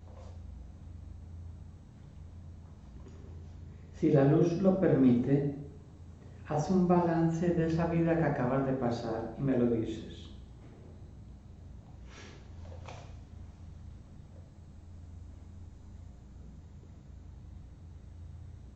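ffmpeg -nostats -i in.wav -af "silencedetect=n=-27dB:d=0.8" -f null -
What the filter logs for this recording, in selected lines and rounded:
silence_start: 0.00
silence_end: 4.03 | silence_duration: 4.03
silence_start: 5.49
silence_end: 6.51 | silence_duration: 1.02
silence_start: 9.83
silence_end: 18.76 | silence_duration: 8.93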